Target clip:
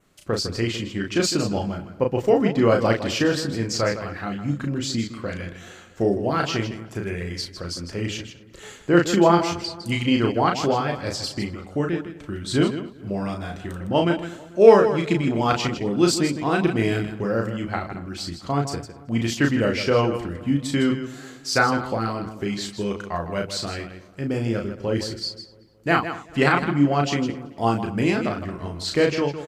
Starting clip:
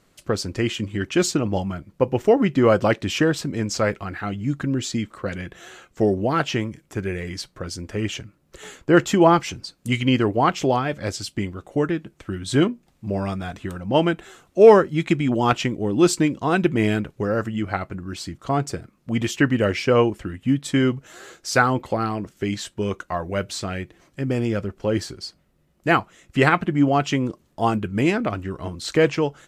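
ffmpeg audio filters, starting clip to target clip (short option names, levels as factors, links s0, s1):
-filter_complex "[0:a]asplit=2[s0][s1];[s1]adelay=222,lowpass=f=2600:p=1,volume=0.126,asplit=2[s2][s3];[s3]adelay=222,lowpass=f=2600:p=1,volume=0.51,asplit=2[s4][s5];[s5]adelay=222,lowpass=f=2600:p=1,volume=0.51,asplit=2[s6][s7];[s7]adelay=222,lowpass=f=2600:p=1,volume=0.51[s8];[s2][s4][s6][s8]amix=inputs=4:normalize=0[s9];[s0][s9]amix=inputs=2:normalize=0,adynamicequalizer=threshold=0.00316:dfrequency=4600:dqfactor=3.7:tfrequency=4600:tqfactor=3.7:attack=5:release=100:ratio=0.375:range=4:mode=boostabove:tftype=bell,asplit=2[s10][s11];[s11]aecho=0:1:34.99|157.4:0.631|0.316[s12];[s10][s12]amix=inputs=2:normalize=0,volume=0.708"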